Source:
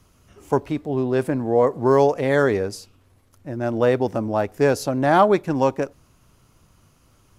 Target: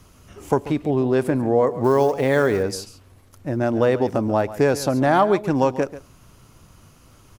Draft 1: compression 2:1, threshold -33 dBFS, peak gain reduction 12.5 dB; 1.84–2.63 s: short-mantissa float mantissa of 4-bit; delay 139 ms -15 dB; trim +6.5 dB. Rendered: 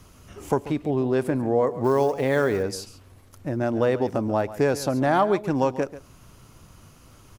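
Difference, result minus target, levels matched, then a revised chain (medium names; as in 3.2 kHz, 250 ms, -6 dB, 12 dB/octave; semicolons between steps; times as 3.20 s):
compression: peak gain reduction +3.5 dB
compression 2:1, threshold -26 dBFS, peak gain reduction 9 dB; 1.84–2.63 s: short-mantissa float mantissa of 4-bit; delay 139 ms -15 dB; trim +6.5 dB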